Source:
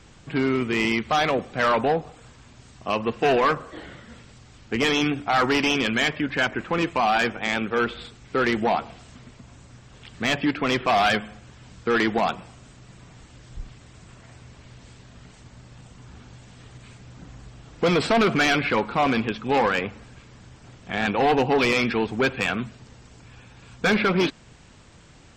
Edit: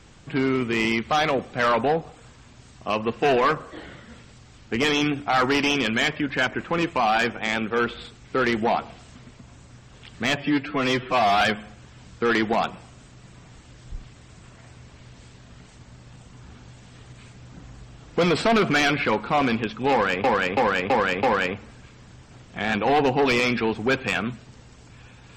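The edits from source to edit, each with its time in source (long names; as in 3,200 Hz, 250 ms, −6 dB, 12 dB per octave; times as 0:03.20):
0:10.36–0:11.06: time-stretch 1.5×
0:19.56–0:19.89: repeat, 5 plays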